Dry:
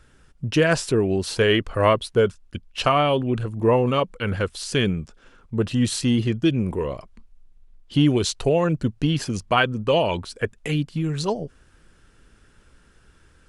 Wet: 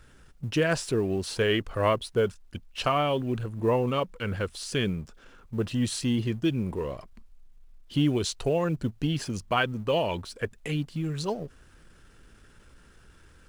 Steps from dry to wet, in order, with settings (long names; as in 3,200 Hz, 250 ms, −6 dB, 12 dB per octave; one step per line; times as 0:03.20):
mu-law and A-law mismatch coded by mu
level −6.5 dB